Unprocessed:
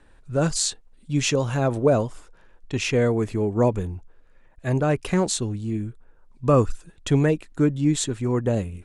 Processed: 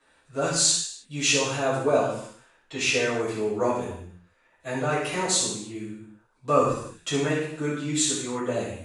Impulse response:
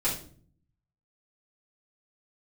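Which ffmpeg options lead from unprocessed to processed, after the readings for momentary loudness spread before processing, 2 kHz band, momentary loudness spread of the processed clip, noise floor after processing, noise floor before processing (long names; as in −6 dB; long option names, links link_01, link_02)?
10 LU, +3.5 dB, 15 LU, −64 dBFS, −54 dBFS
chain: -filter_complex "[0:a]highpass=frequency=1100:poles=1[link_01];[1:a]atrim=start_sample=2205,afade=type=out:start_time=0.23:duration=0.01,atrim=end_sample=10584,asetrate=22932,aresample=44100[link_02];[link_01][link_02]afir=irnorm=-1:irlink=0,volume=-8.5dB"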